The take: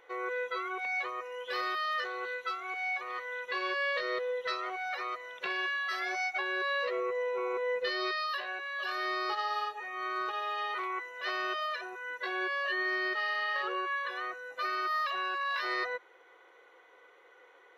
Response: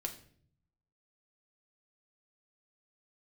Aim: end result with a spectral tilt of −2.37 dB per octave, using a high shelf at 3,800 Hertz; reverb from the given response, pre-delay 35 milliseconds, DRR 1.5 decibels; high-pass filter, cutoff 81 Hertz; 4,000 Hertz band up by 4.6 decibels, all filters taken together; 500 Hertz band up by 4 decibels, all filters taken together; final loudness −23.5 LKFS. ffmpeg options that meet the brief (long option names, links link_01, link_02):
-filter_complex "[0:a]highpass=81,equalizer=frequency=500:width_type=o:gain=4.5,highshelf=frequency=3800:gain=-5.5,equalizer=frequency=4000:width_type=o:gain=9,asplit=2[link_01][link_02];[1:a]atrim=start_sample=2205,adelay=35[link_03];[link_02][link_03]afir=irnorm=-1:irlink=0,volume=-1dB[link_04];[link_01][link_04]amix=inputs=2:normalize=0,volume=5dB"